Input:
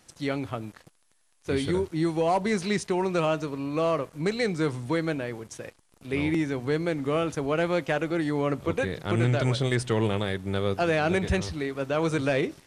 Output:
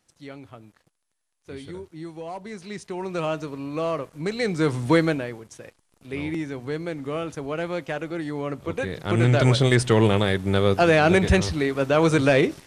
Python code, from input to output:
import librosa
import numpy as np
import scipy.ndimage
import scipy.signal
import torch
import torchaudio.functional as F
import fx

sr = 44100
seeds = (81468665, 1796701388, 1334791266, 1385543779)

y = fx.gain(x, sr, db=fx.line((2.58, -11.0), (3.27, -1.0), (4.26, -1.0), (4.96, 9.0), (5.43, -3.0), (8.6, -3.0), (9.45, 7.0)))